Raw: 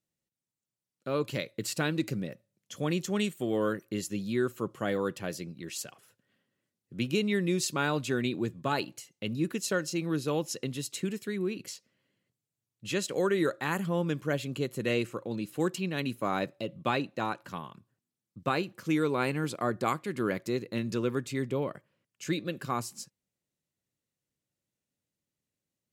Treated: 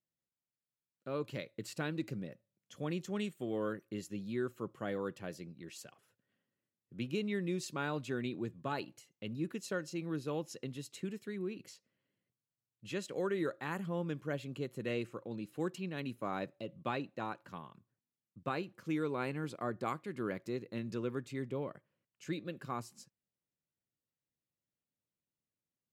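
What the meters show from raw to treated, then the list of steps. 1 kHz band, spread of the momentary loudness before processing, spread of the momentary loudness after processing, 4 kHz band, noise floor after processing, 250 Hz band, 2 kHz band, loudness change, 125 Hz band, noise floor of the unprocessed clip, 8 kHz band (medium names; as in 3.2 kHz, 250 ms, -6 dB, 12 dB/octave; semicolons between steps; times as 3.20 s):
-8.0 dB, 10 LU, 12 LU, -11.0 dB, under -85 dBFS, -7.5 dB, -9.0 dB, -8.0 dB, -7.5 dB, under -85 dBFS, -13.5 dB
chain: treble shelf 3.8 kHz -7.5 dB; trim -7.5 dB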